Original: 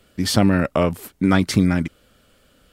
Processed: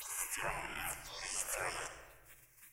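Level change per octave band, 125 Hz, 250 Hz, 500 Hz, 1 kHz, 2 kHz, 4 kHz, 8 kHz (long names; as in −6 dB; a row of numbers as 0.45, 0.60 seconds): −35.5, −40.0, −24.0, −15.5, −12.5, −18.5, −6.5 decibels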